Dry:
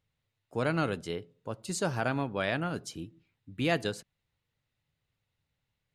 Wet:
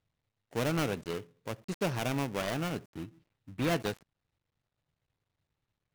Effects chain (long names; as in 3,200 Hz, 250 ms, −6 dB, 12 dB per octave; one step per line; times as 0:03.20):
gap after every zero crossing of 0.29 ms